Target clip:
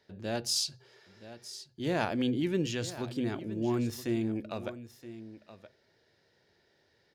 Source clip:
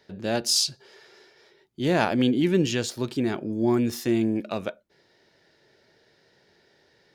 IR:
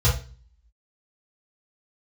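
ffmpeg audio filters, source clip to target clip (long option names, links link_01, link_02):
-filter_complex "[0:a]aecho=1:1:972:0.188,asplit=2[link_01][link_02];[1:a]atrim=start_sample=2205[link_03];[link_02][link_03]afir=irnorm=-1:irlink=0,volume=-35.5dB[link_04];[link_01][link_04]amix=inputs=2:normalize=0,volume=-8dB"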